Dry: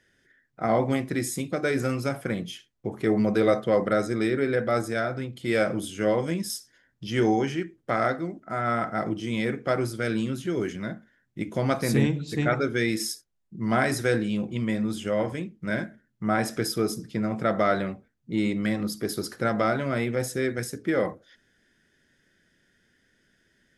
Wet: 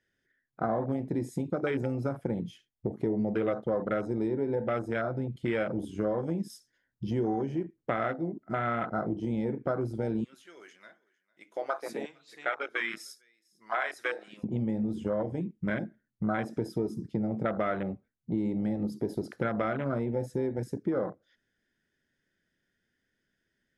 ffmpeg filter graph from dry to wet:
ffmpeg -i in.wav -filter_complex "[0:a]asettb=1/sr,asplit=3[link_01][link_02][link_03];[link_01]atrim=end=10.244[link_04];[link_02]atrim=start=10.24:end=14.44,asetpts=PTS-STARTPTS,afade=type=in:duration=0.004:curve=qsin,afade=type=out:start_time=4.196:duration=0.004:curve=qsin,highpass=790,aecho=1:1:452:0.0631,atrim=end_sample=185220[link_05];[link_03]atrim=start=14.436[link_06];[link_04][link_05]acrossfade=duration=0.004:curve1=hsin:curve2=qsin[link_07];[link_07][link_06]acrossfade=duration=0.004:curve1=qsin:curve2=hsin,afwtdn=0.0355,highshelf=frequency=7100:gain=-5.5,acompressor=threshold=-32dB:ratio=4,volume=4dB" out.wav

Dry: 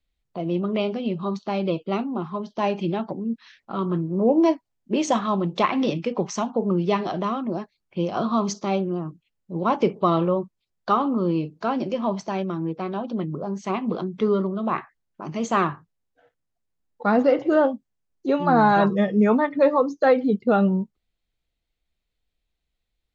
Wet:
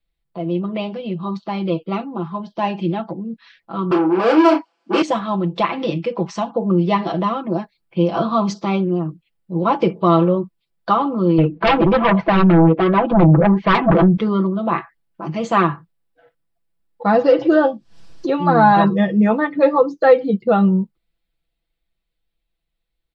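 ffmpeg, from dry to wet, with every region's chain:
ffmpeg -i in.wav -filter_complex "[0:a]asettb=1/sr,asplit=3[link_01][link_02][link_03];[link_01]atrim=end=3.914[link_04];[link_02]atrim=start=3.91:end=5.02,asetpts=PTS-STARTPTS,afade=type=in:duration=0.004:curve=qsin,afade=type=out:start_time=1.106:duration=0.004:curve=qsin,asplit=2[link_05][link_06];[link_06]highpass=frequency=720:poles=1,volume=32dB,asoftclip=type=tanh:threshold=-9.5dB[link_07];[link_05][link_07]amix=inputs=2:normalize=0,lowpass=frequency=4400:poles=1,volume=-6dB,highpass=frequency=270:width=0.5412,highpass=frequency=270:width=1.3066,equalizer=frequency=570:width_type=q:width=4:gain=-5,equalizer=frequency=1200:width_type=q:width=4:gain=3,equalizer=frequency=1900:width_type=q:width=4:gain=-9,equalizer=frequency=3700:width_type=q:width=4:gain=-8,lowpass=frequency=6100:width=0.5412,lowpass=frequency=6100:width=1.3066,asplit=2[link_08][link_09];[link_09]adelay=32,volume=-6dB[link_10];[link_08][link_10]amix=inputs=2:normalize=0,atrim=end_sample=48951[link_11];[link_03]atrim=start=5.016[link_12];[link_04][link_11]acrossfade=duration=0.004:curve1=hsin:curve2=qsin[link_13];[link_13][link_12]acrossfade=duration=0.004:curve1=qsin:curve2=hsin,asettb=1/sr,asplit=3[link_14][link_15][link_16];[link_14]atrim=end=11.384[link_17];[link_15]atrim=start=11.38:end=14.17,asetpts=PTS-STARTPTS,afade=type=in:duration=0.004:curve=qsin,afade=type=out:start_time=2.786:duration=0.004:curve=qsin,lowpass=frequency=2600:width=0.5412,lowpass=frequency=2600:width=1.3066,flanger=delay=1.7:depth=4.7:regen=23:speed=1.3:shape=sinusoidal,aeval=exprs='0.168*sin(PI/2*3.55*val(0)/0.168)':channel_layout=same[link_18];[link_16]atrim=start=14.166[link_19];[link_17][link_18]acrossfade=duration=0.004:curve1=hsin:curve2=qsin[link_20];[link_20][link_19]acrossfade=duration=0.004:curve1=qsin:curve2=hsin,asettb=1/sr,asplit=3[link_21][link_22][link_23];[link_21]atrim=end=17.144[link_24];[link_22]atrim=start=17.14:end=18.3,asetpts=PTS-STARTPTS,afade=type=in:duration=0.004:curve=qsin,afade=type=out:start_time=1.156:duration=0.004:curve=qsin,lowpass=frequency=5600:width_type=q:width=2.4,bandreject=frequency=2100:width=8.9,acompressor=mode=upward:threshold=-20dB:ratio=2.5:attack=3.2:release=140:knee=2.83:detection=peak[link_25];[link_23]atrim=start=18.296[link_26];[link_24][link_25]acrossfade=duration=0.004:curve1=hsin:curve2=qsin[link_27];[link_27][link_26]acrossfade=duration=0.004:curve1=qsin:curve2=hsin,equalizer=frequency=6400:width_type=o:width=0.43:gain=-11,aecho=1:1:6:0.76,dynaudnorm=framelen=130:gausssize=31:maxgain=11.5dB,volume=-1dB" out.wav

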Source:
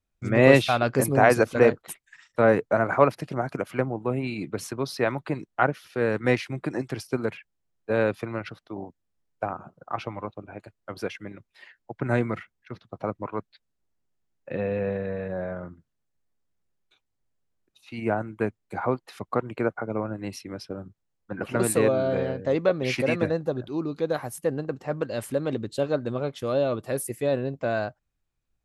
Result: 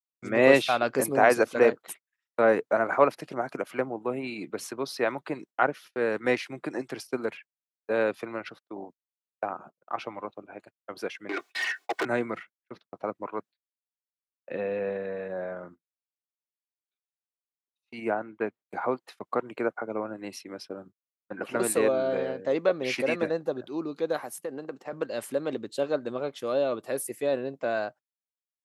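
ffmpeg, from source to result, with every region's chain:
ffmpeg -i in.wav -filter_complex "[0:a]asettb=1/sr,asplit=3[link_01][link_02][link_03];[link_01]atrim=end=11.294[link_04];[link_02]atrim=start=11.29:end=12.05,asetpts=PTS-STARTPTS,afade=type=in:duration=0.004:curve=qsin,afade=type=out:start_time=0.756:duration=0.004:curve=qsin,highpass=350,aecho=1:1:2.7:0.76,atrim=end_sample=33516,asplit=2[link_05][link_06];[link_06]highpass=frequency=720:poles=1,volume=32dB,asoftclip=type=tanh:threshold=-18dB[link_07];[link_05][link_07]amix=inputs=2:normalize=0,lowpass=frequency=5200:poles=1,volume=-6dB[link_08];[link_03]atrim=start=12.046[link_09];[link_04][link_08]acrossfade=duration=0.004:curve1=hsin:curve2=qsin[link_10];[link_10][link_09]acrossfade=duration=0.004:curve1=qsin:curve2=hsin,asettb=1/sr,asplit=3[link_11][link_12][link_13];[link_11]atrim=end=18.114[link_14];[link_12]atrim=start=18.11:end=18.62,asetpts=PTS-STARTPTS,afade=type=in:duration=0.004:curve=qsin,afade=type=out:start_time=0.506:duration=0.004:curve=qsin,lowpass=3600,lowshelf=frequency=130:gain=-5[link_15];[link_13]atrim=start=18.616[link_16];[link_14][link_15]acrossfade=duration=0.004:curve1=hsin:curve2=qsin[link_17];[link_17][link_16]acrossfade=duration=0.004:curve1=qsin:curve2=hsin,asettb=1/sr,asplit=3[link_18][link_19][link_20];[link_18]atrim=end=24.224[link_21];[link_19]atrim=start=24.22:end=24.93,asetpts=PTS-STARTPTS,afade=type=in:duration=0.004:curve=qsin,afade=type=out:start_time=0.706:duration=0.004:curve=qsin,highpass=160,acompressor=threshold=-28dB:ratio=4:attack=3.2:release=140:knee=1:detection=peak[link_22];[link_20]atrim=start=24.926[link_23];[link_21][link_22]acrossfade=duration=0.004:curve1=hsin:curve2=qsin[link_24];[link_24][link_23]acrossfade=duration=0.004:curve1=qsin:curve2=hsin,agate=range=-31dB:threshold=-43dB:ratio=16:detection=peak,highpass=270,volume=-1.5dB" out.wav

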